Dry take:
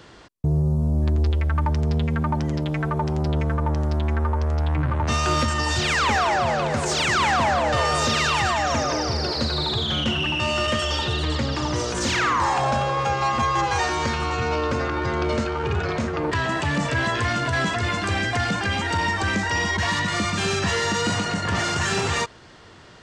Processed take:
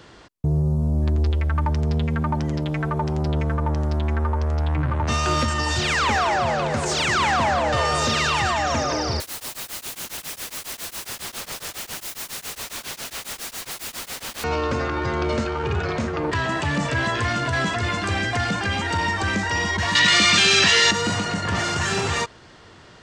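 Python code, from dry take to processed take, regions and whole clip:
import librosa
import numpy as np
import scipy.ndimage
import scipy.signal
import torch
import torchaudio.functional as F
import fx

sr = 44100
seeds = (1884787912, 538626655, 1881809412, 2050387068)

y = fx.chain(x, sr, fx.overflow_wrap(gain_db=26.0),
    fx.tremolo_abs(hz=7.3), at=(9.2, 14.44))
y = fx.chain(y, sr, fx.weighting(curve='D'),
    fx.env_flatten(amount_pct=100), at=(19.95, 20.91))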